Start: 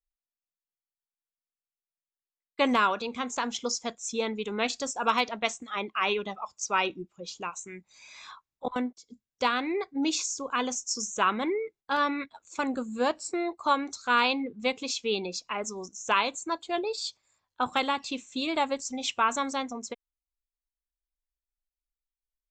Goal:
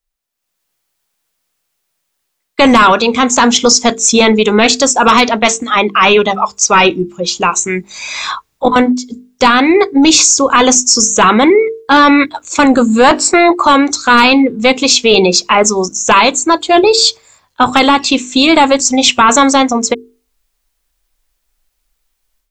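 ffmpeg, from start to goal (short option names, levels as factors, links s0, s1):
-filter_complex "[0:a]dynaudnorm=f=320:g=3:m=4.73,asettb=1/sr,asplit=3[s0][s1][s2];[s0]atrim=end=13.044[s3];[s1]atrim=start=13.04:end=13.65,asetpts=PTS-STARTPTS,afade=t=in:d=0.004:c=qsin,afade=t=out:st=0.606:d=0.004:c=qsin,equalizer=f=1200:w=0.43:g=8.5[s4];[s2]atrim=start=13.646[s5];[s3][s4]acrossfade=d=0.004:c1=hsin:c2=qsin[s6];[s6][s5]acrossfade=d=0.004:c1=qsin:c2=hsin,bandreject=f=50:t=h:w=6,bandreject=f=100:t=h:w=6,bandreject=f=150:t=h:w=6,bandreject=f=200:t=h:w=6,bandreject=f=250:t=h:w=6,bandreject=f=300:t=h:w=6,bandreject=f=350:t=h:w=6,bandreject=f=400:t=h:w=6,bandreject=f=450:t=h:w=6,apsyclip=5.96,volume=0.794"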